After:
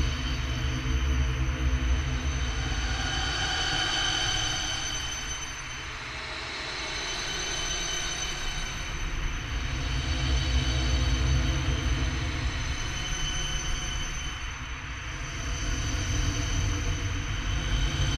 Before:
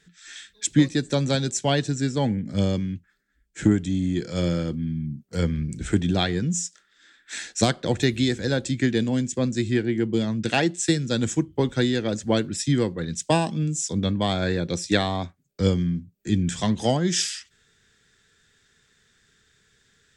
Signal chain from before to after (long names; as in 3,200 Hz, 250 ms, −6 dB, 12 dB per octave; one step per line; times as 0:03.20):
samples in bit-reversed order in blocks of 256 samples
low-pass filter 3,900 Hz 24 dB per octave
parametric band 1,200 Hz −4.5 dB 2.2 octaves
single-tap delay 307 ms −14 dB
extreme stretch with random phases 13×, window 0.25 s, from 0:10.24
low-shelf EQ 310 Hz +7 dB
speed change +11%
noise in a band 950–2,800 Hz −43 dBFS
level +2.5 dB